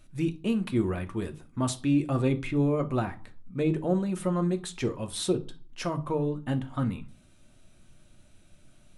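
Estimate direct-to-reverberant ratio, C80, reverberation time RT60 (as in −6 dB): 6.5 dB, 23.0 dB, 0.40 s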